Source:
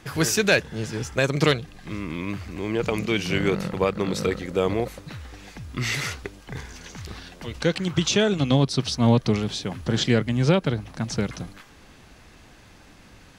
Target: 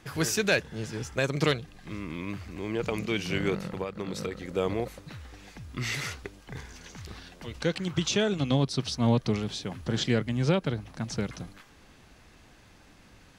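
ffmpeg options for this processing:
-filter_complex "[0:a]asplit=3[a][b][c];[a]afade=t=out:st=3.58:d=0.02[d];[b]acompressor=threshold=-24dB:ratio=6,afade=t=in:st=3.58:d=0.02,afade=t=out:st=4.48:d=0.02[e];[c]afade=t=in:st=4.48:d=0.02[f];[d][e][f]amix=inputs=3:normalize=0,volume=-5.5dB"

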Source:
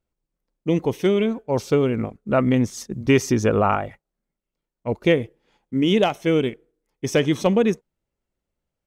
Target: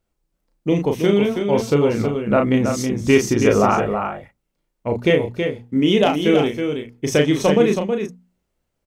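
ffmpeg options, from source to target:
-filter_complex "[0:a]bandreject=f=60:t=h:w=6,bandreject=f=120:t=h:w=6,bandreject=f=180:t=h:w=6,bandreject=f=240:t=h:w=6,asplit=2[a][b];[b]acompressor=threshold=-31dB:ratio=6,volume=0dB[c];[a][c]amix=inputs=2:normalize=0,asplit=2[d][e];[e]adelay=34,volume=-4.5dB[f];[d][f]amix=inputs=2:normalize=0,aecho=1:1:323:0.473"

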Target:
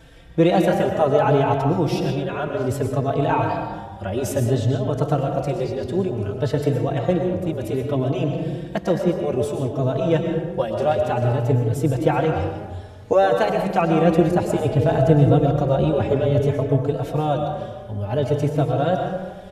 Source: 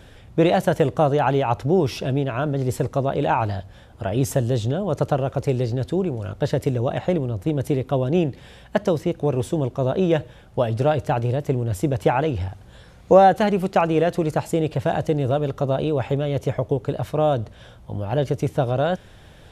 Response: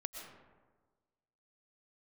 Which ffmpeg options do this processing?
-filter_complex "[0:a]asettb=1/sr,asplit=3[a][b][c];[a]atrim=end=14.044[d];[b]atrim=start=14.04:end=16.47,asetpts=PTS-STARTPTS,afade=t=in:d=0.004:c=qsin,afade=t=out:st=2.426:d=0.004:c=qsin,lowshelf=f=330:g=8.5[e];[c]atrim=start=16.466[f];[d][e]acrossfade=d=0.004:c1=hsin:c2=qsin[g];[g][f]acrossfade=d=0.004:c1=qsin:c2=hsin[h];[1:a]atrim=start_sample=2205[i];[h][i]afir=irnorm=-1:irlink=0,asplit=2[j][k];[k]adelay=4,afreqshift=0.59[l];[j][l]amix=inputs=2:normalize=1,volume=5dB"

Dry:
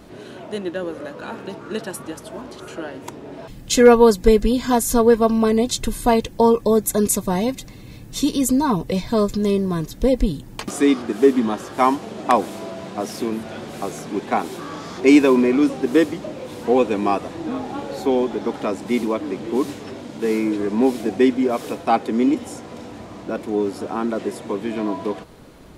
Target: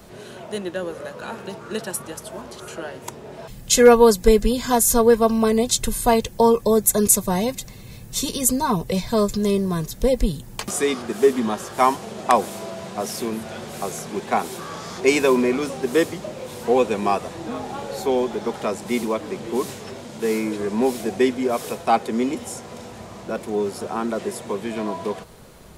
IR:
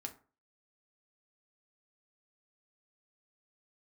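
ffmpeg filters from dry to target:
-filter_complex "[0:a]acrossover=split=120|5900[a][b][c];[c]acontrast=71[d];[a][b][d]amix=inputs=3:normalize=0,equalizer=f=290:t=o:w=0.25:g=-14.5"

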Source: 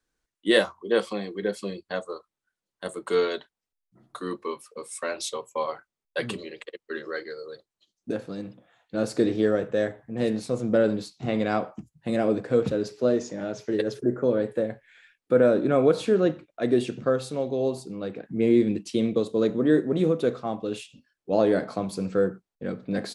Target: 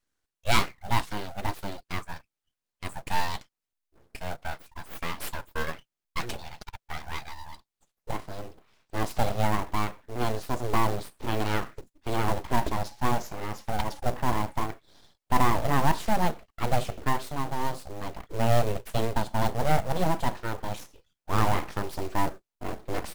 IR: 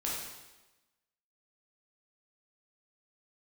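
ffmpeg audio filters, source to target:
-af "aeval=exprs='abs(val(0))':c=same,acrusher=bits=5:mode=log:mix=0:aa=0.000001"

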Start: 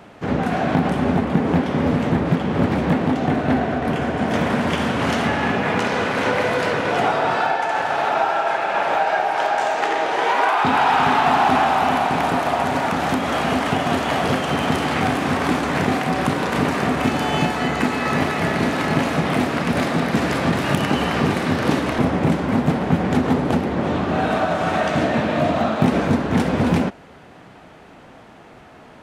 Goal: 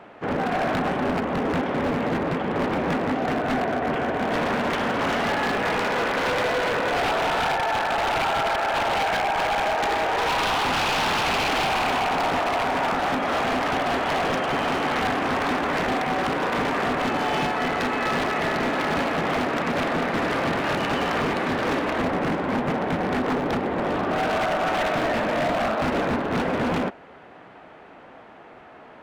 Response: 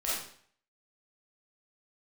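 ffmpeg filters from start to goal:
-af "bass=f=250:g=-10,treble=f=4k:g=-15,aeval=exprs='0.126*(abs(mod(val(0)/0.126+3,4)-2)-1)':c=same"

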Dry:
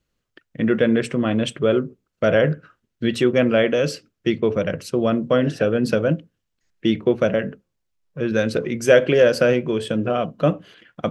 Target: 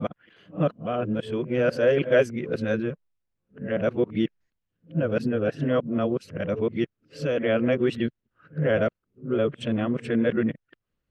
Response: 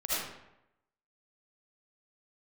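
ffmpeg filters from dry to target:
-af "areverse,bass=f=250:g=2,treble=f=4k:g=-11,volume=-6dB"

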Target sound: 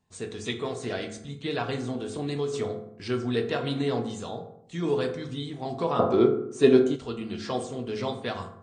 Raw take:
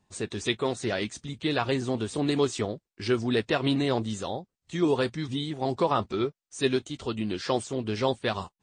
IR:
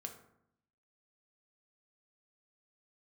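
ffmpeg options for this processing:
-filter_complex "[1:a]atrim=start_sample=2205,afade=t=out:st=0.43:d=0.01,atrim=end_sample=19404[a];[0:a][a]afir=irnorm=-1:irlink=0,asettb=1/sr,asplit=3[b][c][d];[b]atrim=end=1.884[e];[c]atrim=start=1.88:end=2.54,asetpts=PTS-STARTPTS,afade=t=in:d=0.004:c=qsin,afade=t=out:st=0.656:d=0.004:c=qsin,acompressor=threshold=-27dB:ratio=3[f];[d]atrim=start=2.536[g];[e][f]acrossfade=d=0.004:c1=hsin:c2=qsin[h];[h][g]acrossfade=d=0.004:c1=qsin:c2=hsin,asettb=1/sr,asplit=3[i][j][k];[i]atrim=end=5.994[l];[j]atrim=start=5.99:end=6.96,asetpts=PTS-STARTPTS,afade=t=in:d=0.004:c=qsin,afade=t=out:st=0.966:d=0.004:c=qsin,equalizer=f=420:w=0.37:g=13[m];[k]atrim=start=6.956[n];[l][m]acrossfade=d=0.004:c1=hsin:c2=qsin[o];[o][n]acrossfade=d=0.004:c1=qsin:c2=hsin"

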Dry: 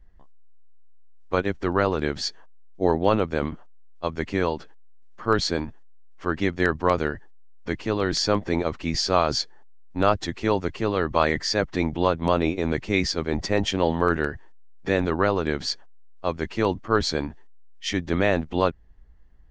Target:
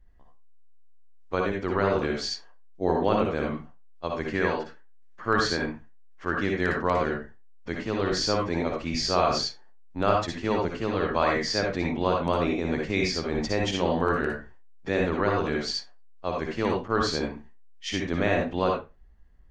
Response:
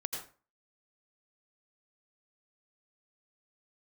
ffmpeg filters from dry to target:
-filter_complex "[0:a]asettb=1/sr,asplit=3[a][b][c];[a]atrim=end=4.254[d];[b]atrim=start=4.25:end=6.35,asetpts=PTS-STARTPTS,afade=t=in:d=0.004:c=qsin,afade=t=out:st=2.096:d=0.004:c=qsin,equalizer=f=1.7k:w=2.4:g=7[e];[c]atrim=start=6.346[f];[d][e]acrossfade=d=0.004:c1=hsin:c2=qsin[g];[g][f]acrossfade=d=0.004:c1=qsin:c2=hsin[h];[1:a]atrim=start_sample=2205,asetrate=66150,aresample=44100[i];[h][i]afir=irnorm=-1:irlink=0"

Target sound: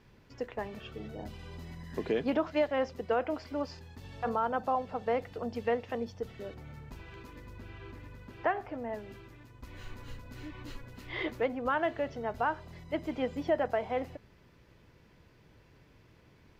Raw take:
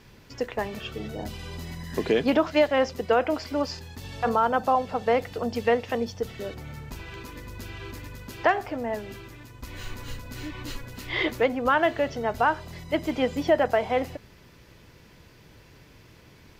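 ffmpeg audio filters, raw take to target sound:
-filter_complex "[0:a]asettb=1/sr,asplit=3[a][b][c];[a]atrim=end=7.584[d];[b]atrim=start=7.58:end=8.89,asetpts=PTS-STARTPTS,afade=t=in:d=0.004:c=qsin,afade=t=out:st=1.306:d=0.004:c=qsin,acrossover=split=3200[e][f];[f]acompressor=threshold=-54dB:ratio=4:attack=1:release=60[g];[e][g]amix=inputs=2:normalize=0[h];[c]atrim=start=8.886[i];[d][h]acrossfade=d=0.004:c1=hsin:c2=qsin[j];[j][i]acrossfade=d=0.004:c1=qsin:c2=hsin,highshelf=f=3.6k:g=-9.5,volume=-7.5dB"

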